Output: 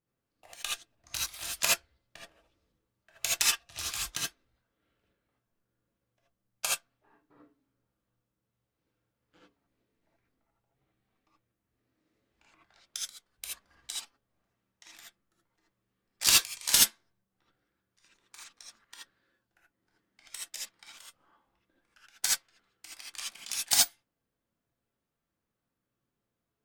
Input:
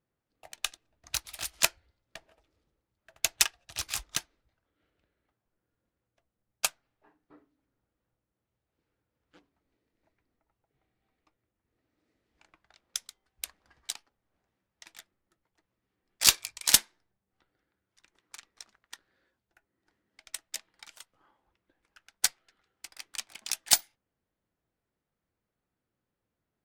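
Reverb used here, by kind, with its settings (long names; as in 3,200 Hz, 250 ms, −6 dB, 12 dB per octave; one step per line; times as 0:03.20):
reverb whose tail is shaped and stops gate 100 ms rising, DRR −5 dB
level −6 dB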